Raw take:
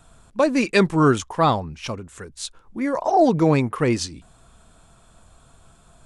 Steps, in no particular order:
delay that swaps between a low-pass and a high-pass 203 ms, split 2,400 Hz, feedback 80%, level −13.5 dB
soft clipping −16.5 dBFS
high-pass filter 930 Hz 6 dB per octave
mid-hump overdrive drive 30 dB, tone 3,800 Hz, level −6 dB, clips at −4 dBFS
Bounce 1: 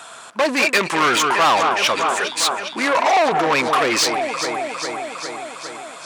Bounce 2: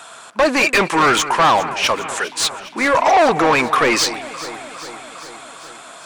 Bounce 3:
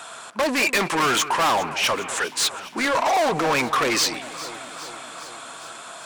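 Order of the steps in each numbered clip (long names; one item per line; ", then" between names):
delay that swaps between a low-pass and a high-pass, then soft clipping, then mid-hump overdrive, then high-pass filter
soft clipping, then high-pass filter, then mid-hump overdrive, then delay that swaps between a low-pass and a high-pass
mid-hump overdrive, then high-pass filter, then soft clipping, then delay that swaps between a low-pass and a high-pass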